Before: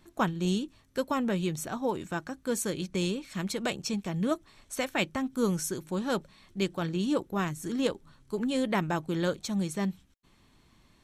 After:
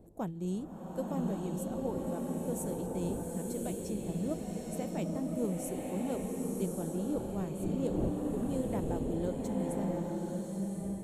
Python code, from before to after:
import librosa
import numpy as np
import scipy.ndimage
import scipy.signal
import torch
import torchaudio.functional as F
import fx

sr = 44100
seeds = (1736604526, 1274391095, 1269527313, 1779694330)

y = fx.dmg_wind(x, sr, seeds[0], corner_hz=330.0, level_db=-41.0)
y = fx.band_shelf(y, sr, hz=2500.0, db=-14.5, octaves=2.8)
y = fx.rev_bloom(y, sr, seeds[1], attack_ms=1120, drr_db=-1.5)
y = y * 10.0 ** (-7.0 / 20.0)